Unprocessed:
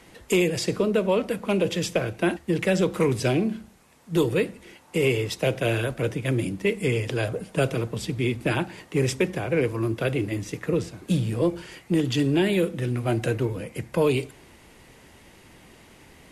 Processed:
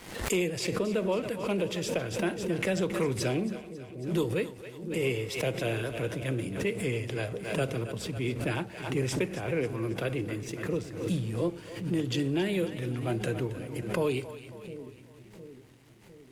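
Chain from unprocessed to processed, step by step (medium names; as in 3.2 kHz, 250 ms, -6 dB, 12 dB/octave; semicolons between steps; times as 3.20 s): crossover distortion -53.5 dBFS; on a send: two-band feedback delay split 450 Hz, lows 707 ms, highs 273 ms, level -12.5 dB; on the sum: swell ahead of each attack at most 74 dB/s; trim -7 dB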